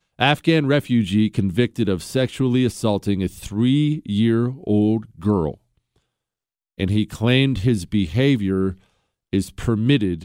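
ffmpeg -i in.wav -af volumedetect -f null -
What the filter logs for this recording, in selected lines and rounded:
mean_volume: -20.2 dB
max_volume: -3.0 dB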